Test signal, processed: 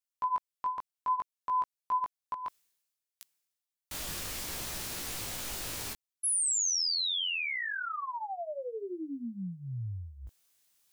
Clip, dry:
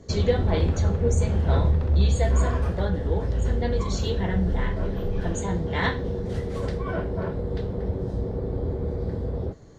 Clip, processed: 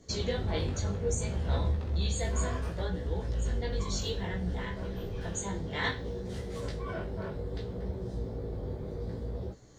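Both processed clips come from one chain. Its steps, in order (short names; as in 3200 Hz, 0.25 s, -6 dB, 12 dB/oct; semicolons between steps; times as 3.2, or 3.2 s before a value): high shelf 2600 Hz +10.5 dB; reverse; upward compressor, threshold -42 dBFS; reverse; chorus 0.63 Hz, delay 16 ms, depth 4.3 ms; gain -6 dB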